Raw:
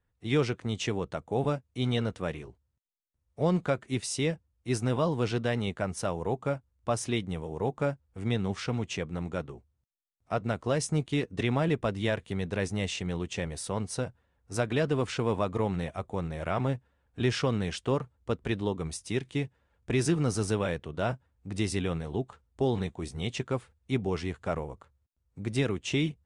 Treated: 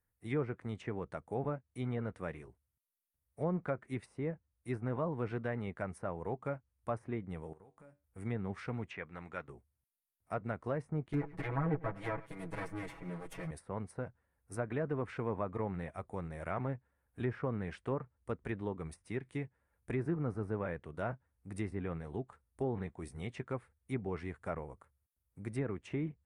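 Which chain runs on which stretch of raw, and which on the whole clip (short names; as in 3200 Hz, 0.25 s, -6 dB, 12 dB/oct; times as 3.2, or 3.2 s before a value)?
7.53–8.04 compressor, threshold -43 dBFS + resonator 96 Hz, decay 0.33 s
8.9–9.48 LPF 3300 Hz + tilt shelf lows -8 dB, about 820 Hz
11.13–13.51 minimum comb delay 7.1 ms + comb 6.2 ms, depth 97% + echo 0.101 s -20.5 dB
whole clip: pre-emphasis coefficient 0.8; treble ducked by the level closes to 1300 Hz, closed at -35.5 dBFS; band shelf 4500 Hz -15.5 dB; gain +5.5 dB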